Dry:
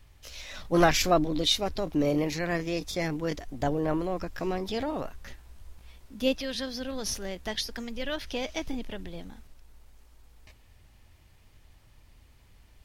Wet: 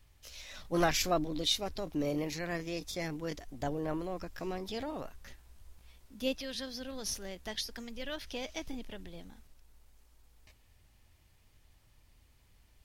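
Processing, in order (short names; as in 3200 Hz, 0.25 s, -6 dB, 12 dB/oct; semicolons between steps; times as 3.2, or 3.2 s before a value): high shelf 4300 Hz +5 dB; gain -7.5 dB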